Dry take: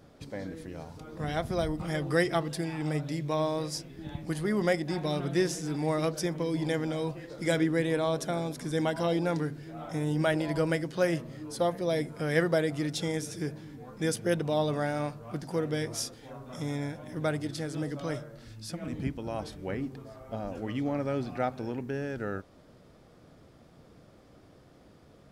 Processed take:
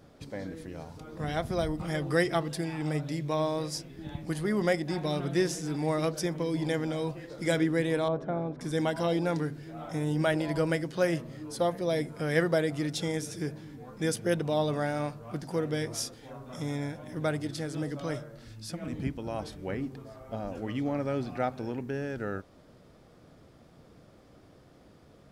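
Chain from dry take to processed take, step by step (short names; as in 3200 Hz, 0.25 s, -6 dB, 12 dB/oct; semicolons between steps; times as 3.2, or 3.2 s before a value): 8.08–8.61 LPF 1300 Hz 12 dB/oct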